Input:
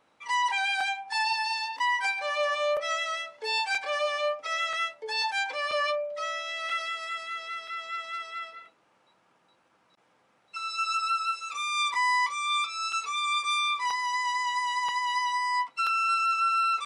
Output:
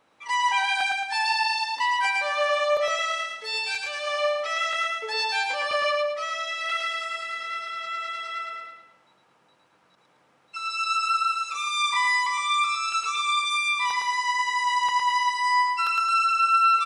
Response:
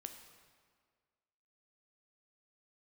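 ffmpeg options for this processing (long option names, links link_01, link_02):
-filter_complex "[0:a]asplit=3[link_01][link_02][link_03];[link_01]afade=type=out:start_time=3.4:duration=0.02[link_04];[link_02]equalizer=frequency=770:width_type=o:width=2.2:gain=-11.5,afade=type=in:start_time=3.4:duration=0.02,afade=type=out:start_time=4.06:duration=0.02[link_05];[link_03]afade=type=in:start_time=4.06:duration=0.02[link_06];[link_04][link_05][link_06]amix=inputs=3:normalize=0,aecho=1:1:110|220|330|440|550:0.668|0.267|0.107|0.0428|0.0171,volume=2dB"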